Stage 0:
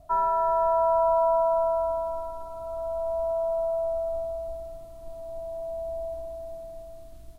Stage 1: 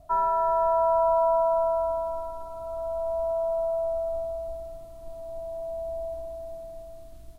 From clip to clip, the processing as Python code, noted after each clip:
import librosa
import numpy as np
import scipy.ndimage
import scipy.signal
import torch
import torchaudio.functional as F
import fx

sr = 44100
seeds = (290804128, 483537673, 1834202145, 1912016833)

y = x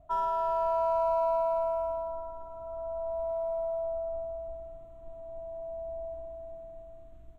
y = fx.wiener(x, sr, points=9)
y = F.gain(torch.from_numpy(y), -5.0).numpy()